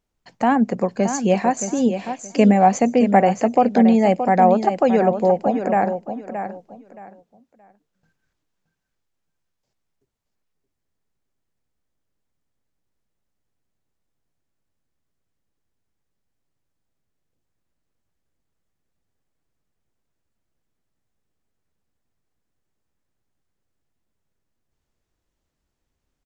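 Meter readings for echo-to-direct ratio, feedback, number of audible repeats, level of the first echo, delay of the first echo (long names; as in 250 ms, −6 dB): −9.0 dB, 23%, 3, −9.0 dB, 623 ms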